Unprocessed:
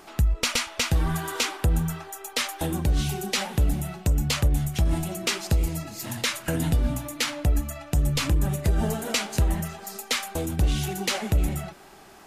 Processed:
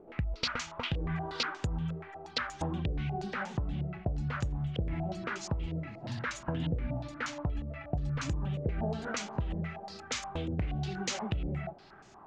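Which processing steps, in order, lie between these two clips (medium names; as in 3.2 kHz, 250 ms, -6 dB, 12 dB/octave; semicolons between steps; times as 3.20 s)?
peaking EQ 120 Hz +7 dB 1.5 oct; compression, threshold -21 dBFS, peak gain reduction 8.5 dB; distance through air 80 m; reverse echo 457 ms -22.5 dB; step-sequenced low-pass 8.4 Hz 490–6700 Hz; trim -8.5 dB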